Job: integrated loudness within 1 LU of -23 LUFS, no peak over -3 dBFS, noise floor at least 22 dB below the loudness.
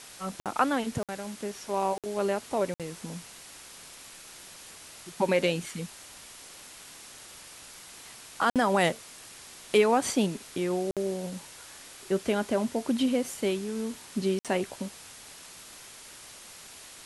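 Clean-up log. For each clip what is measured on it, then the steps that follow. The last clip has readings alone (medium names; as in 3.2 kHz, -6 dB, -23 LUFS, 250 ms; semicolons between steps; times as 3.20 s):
dropouts 7; longest dropout 57 ms; noise floor -48 dBFS; noise floor target -52 dBFS; loudness -29.5 LUFS; peak level -11.5 dBFS; loudness target -23.0 LUFS
-> interpolate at 0.40/1.03/1.98/2.74/8.50/10.91/14.39 s, 57 ms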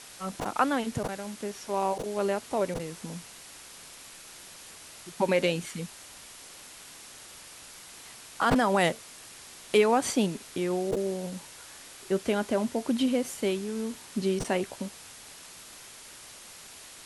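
dropouts 0; noise floor -48 dBFS; noise floor target -51 dBFS
-> noise reduction 6 dB, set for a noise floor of -48 dBFS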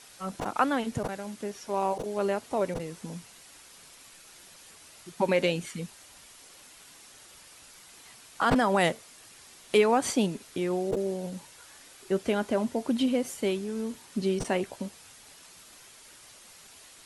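noise floor -53 dBFS; loudness -29.0 LUFS; peak level -11.5 dBFS; loudness target -23.0 LUFS
-> trim +6 dB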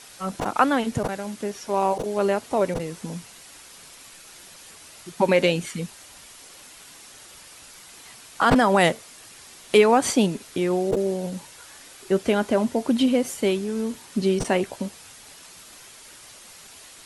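loudness -23.0 LUFS; peak level -5.5 dBFS; noise floor -47 dBFS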